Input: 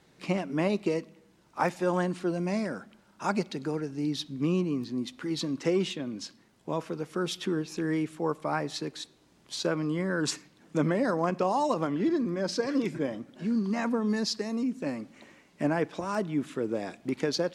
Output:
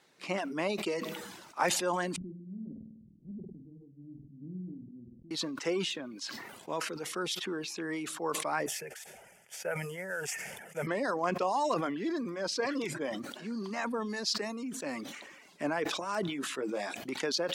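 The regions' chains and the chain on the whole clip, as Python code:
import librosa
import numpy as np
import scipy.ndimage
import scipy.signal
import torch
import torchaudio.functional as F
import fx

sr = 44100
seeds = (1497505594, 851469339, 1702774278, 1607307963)

y = fx.chain(x, sr, fx.lower_of_two(delay_ms=0.48),
    fx.cheby2_lowpass(hz=1300.0, order=4, stop_db=80),
    fx.room_flutter(wall_m=8.5, rt60_s=0.57), at=(2.16, 5.31))
y = fx.chain(y, sr, fx.cvsd(bps=64000),
    fx.fixed_phaser(hz=1100.0, stages=6), at=(8.66, 10.87))
y = fx.chain(y, sr, fx.low_shelf(hz=110.0, db=-11.0),
    fx.doubler(ms=15.0, db=-5.0), at=(16.28, 16.94))
y = fx.highpass(y, sr, hz=660.0, slope=6)
y = fx.dereverb_blind(y, sr, rt60_s=0.52)
y = fx.sustainer(y, sr, db_per_s=40.0)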